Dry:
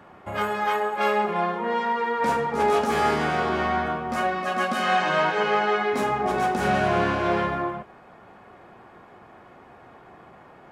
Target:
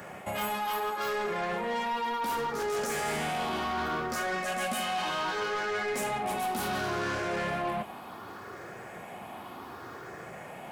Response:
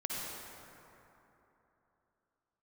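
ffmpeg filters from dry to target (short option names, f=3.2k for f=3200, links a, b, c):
-af "afftfilt=real='re*pow(10,7/40*sin(2*PI*(0.53*log(max(b,1)*sr/1024/100)/log(2)-(0.68)*(pts-256)/sr)))':imag='im*pow(10,7/40*sin(2*PI*(0.53*log(max(b,1)*sr/1024/100)/log(2)-(0.68)*(pts-256)/sr)))':win_size=1024:overlap=0.75,highpass=69,aemphasis=mode=production:type=75fm,areverse,acompressor=threshold=-30dB:ratio=8,areverse,asoftclip=type=tanh:threshold=-32dB,volume=5dB"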